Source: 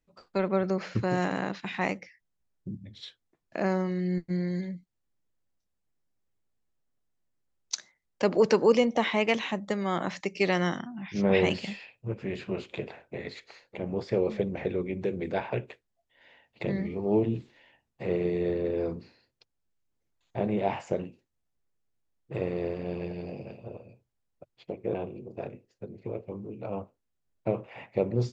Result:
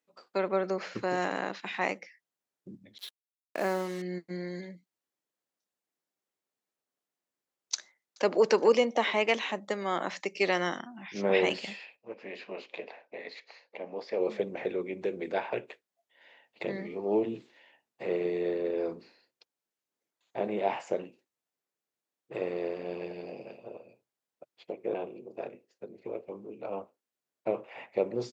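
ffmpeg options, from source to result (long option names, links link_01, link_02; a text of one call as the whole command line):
ffmpeg -i in.wav -filter_complex "[0:a]asettb=1/sr,asplit=3[link_01][link_02][link_03];[link_01]atrim=end=2.984[link_04];[link_02]atrim=start=2.98:end=4.02,asetpts=PTS-STARTPTS,afade=type=in:duration=0.004:curve=qsin,afade=type=out:start_time=1.036:duration=0.004:curve=qsin,acrusher=bits=6:mix=0:aa=0.5[link_05];[link_03]atrim=start=4.016[link_06];[link_04][link_05]acrossfade=duration=0.004:curve1=hsin:curve2=qsin[link_07];[link_07][link_06]acrossfade=duration=0.004:curve1=qsin:curve2=hsin,asplit=2[link_08][link_09];[link_09]afade=type=in:start_time=7.74:duration=0.01,afade=type=out:start_time=8.32:duration=0.01,aecho=0:1:420|840|1260|1680:0.199526|0.0897868|0.0404041|0.0181818[link_10];[link_08][link_10]amix=inputs=2:normalize=0,asplit=3[link_11][link_12][link_13];[link_11]afade=type=out:start_time=11.96:duration=0.02[link_14];[link_12]highpass=280,equalizer=frequency=370:width_type=q:width=4:gain=-8,equalizer=frequency=1400:width_type=q:width=4:gain=-7,equalizer=frequency=3400:width_type=q:width=4:gain=-5,lowpass=frequency=5600:width=0.5412,lowpass=frequency=5600:width=1.3066,afade=type=in:start_time=11.96:duration=0.02,afade=type=out:start_time=14.19:duration=0.02[link_15];[link_13]afade=type=in:start_time=14.19:duration=0.02[link_16];[link_14][link_15][link_16]amix=inputs=3:normalize=0,highpass=330" out.wav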